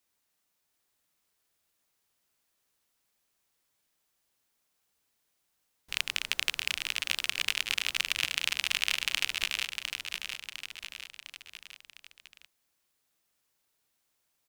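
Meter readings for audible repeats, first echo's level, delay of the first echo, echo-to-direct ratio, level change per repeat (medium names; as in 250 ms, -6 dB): 4, -6.0 dB, 705 ms, -4.5 dB, -5.5 dB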